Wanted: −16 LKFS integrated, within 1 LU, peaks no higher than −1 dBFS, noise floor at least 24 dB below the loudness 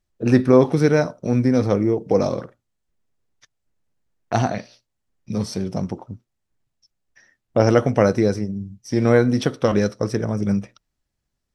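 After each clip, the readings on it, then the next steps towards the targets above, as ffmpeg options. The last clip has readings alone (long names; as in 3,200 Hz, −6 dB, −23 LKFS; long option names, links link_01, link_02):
integrated loudness −20.0 LKFS; sample peak −1.5 dBFS; target loudness −16.0 LKFS
→ -af "volume=4dB,alimiter=limit=-1dB:level=0:latency=1"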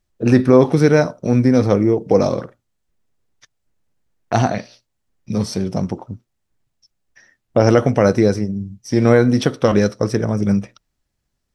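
integrated loudness −16.5 LKFS; sample peak −1.0 dBFS; background noise floor −74 dBFS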